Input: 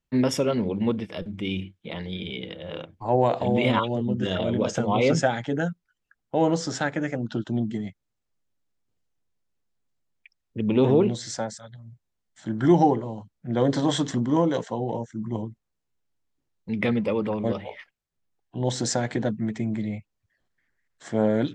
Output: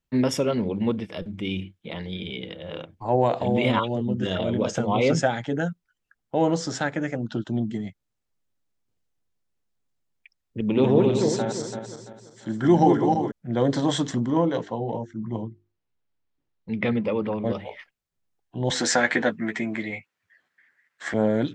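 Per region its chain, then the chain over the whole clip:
10.61–13.32 s: backward echo that repeats 169 ms, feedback 57%, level -3.5 dB + high-pass 110 Hz
14.31–17.50 s: low-pass 4.2 kHz + hum notches 50/100/150/200/250/300/350/400 Hz
18.70–21.14 s: high-pass 180 Hz + peaking EQ 1.8 kHz +13.5 dB 1.8 oct + doubling 12 ms -6 dB
whole clip: none

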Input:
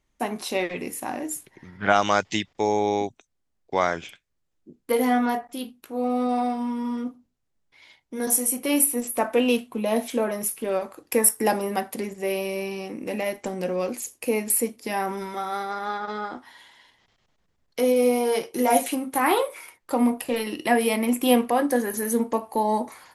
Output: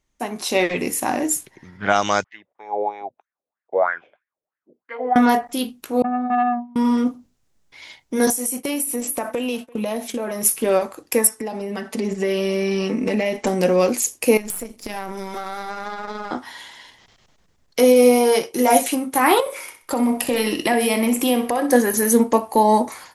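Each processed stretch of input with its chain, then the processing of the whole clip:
2.24–5.16 s: low-pass 2.6 kHz + wah-wah 3.1 Hz 500–1800 Hz, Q 5.8
6.02–6.76 s: gate with hold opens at -17 dBFS, closes at -19 dBFS + two resonant band-passes 400 Hz, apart 1.7 oct + transformer saturation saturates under 630 Hz
8.30–10.45 s: expander -30 dBFS + compression 12:1, threshold -31 dBFS + delay 340 ms -23 dB
11.27–13.47 s: distance through air 69 m + comb 4.6 ms, depth 75% + compression, threshold -27 dBFS
14.37–16.31 s: partial rectifier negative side -7 dB + AM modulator 190 Hz, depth 40% + compression 5:1, threshold -35 dBFS
19.40–21.73 s: compression 3:1, threshold -27 dBFS + feedback delay 63 ms, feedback 33%, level -11 dB
whole clip: peaking EQ 6.3 kHz +4.5 dB 1 oct; level rider; trim -1 dB

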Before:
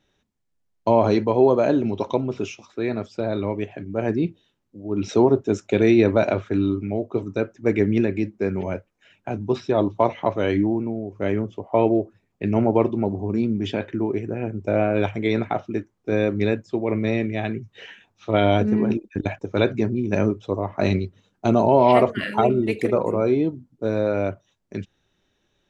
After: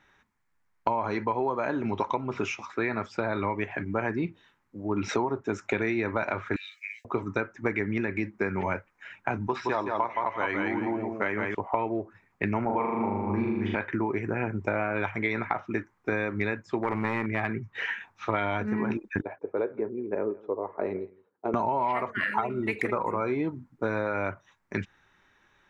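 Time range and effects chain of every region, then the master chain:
6.56–7.05 s: rippled Chebyshev high-pass 1.7 kHz, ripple 3 dB + tilt EQ +3.5 dB/octave
9.47–11.55 s: high-pass 42 Hz + bass shelf 250 Hz -9 dB + feedback delay 169 ms, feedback 22%, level -4.5 dB
12.65–13.75 s: low-pass 3.4 kHz + expander -24 dBFS + flutter echo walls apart 6.8 m, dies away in 1.1 s
16.79–17.75 s: treble shelf 2.2 kHz -7.5 dB + hard clipper -17.5 dBFS
19.22–21.54 s: band-pass filter 450 Hz, Q 3.7 + delay 169 ms -24 dB
whole clip: high-order bell 1.4 kHz +13 dB; compression 12:1, threshold -24 dBFS

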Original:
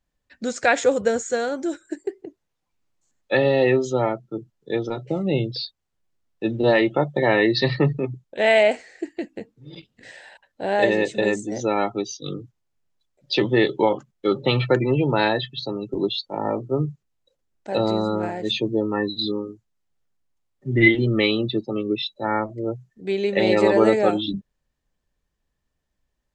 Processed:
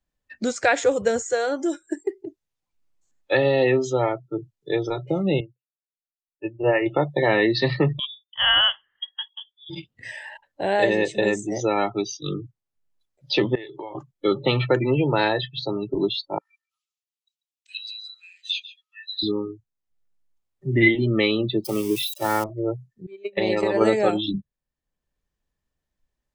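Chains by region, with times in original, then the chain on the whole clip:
5.40–6.86 s: brick-wall FIR low-pass 2.9 kHz + upward expansion 2.5:1, over -39 dBFS
7.99–9.70 s: frequency inversion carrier 3.6 kHz + upward expansion, over -34 dBFS
13.55–13.95 s: bass shelf 260 Hz -7 dB + compression 8:1, threshold -33 dBFS
16.38–19.23 s: steep high-pass 2.6 kHz + treble shelf 3.8 kHz -3.5 dB + delay 142 ms -16.5 dB
21.64–22.44 s: zero-crossing glitches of -22.5 dBFS + expander -30 dBFS
23.06–23.81 s: gate -19 dBFS, range -28 dB + compression 5:1, threshold -17 dBFS
whole clip: spectral noise reduction 16 dB; three bands compressed up and down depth 40%

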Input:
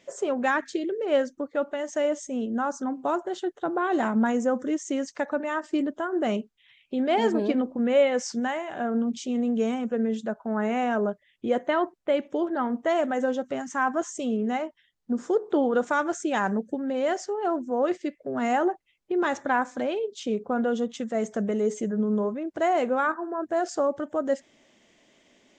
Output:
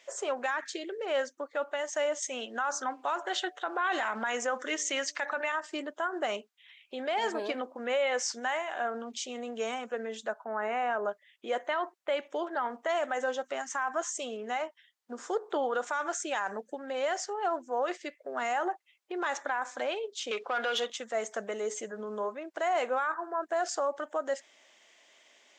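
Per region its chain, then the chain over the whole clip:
2.22–5.52 s: peaking EQ 2.5 kHz +10 dB 2.5 oct + de-hum 147.2 Hz, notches 5
10.44–11.05 s: peaking EQ 6 kHz -12.5 dB 1.8 oct + band-stop 3.4 kHz, Q 17
20.31–20.90 s: frequency weighting D + overdrive pedal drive 15 dB, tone 2.4 kHz, clips at -14.5 dBFS
whole clip: high-pass 760 Hz 12 dB/octave; peak limiter -24 dBFS; trim +2.5 dB

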